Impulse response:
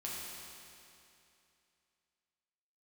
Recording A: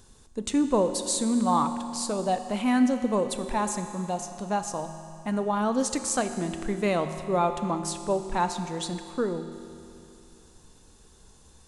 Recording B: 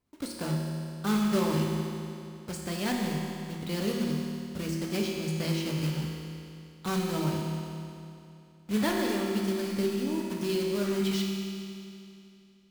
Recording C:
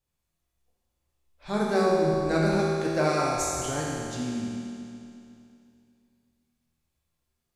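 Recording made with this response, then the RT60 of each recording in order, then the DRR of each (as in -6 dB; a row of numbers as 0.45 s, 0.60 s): C; 2.7 s, 2.7 s, 2.7 s; 8.0 dB, -1.5 dB, -6.0 dB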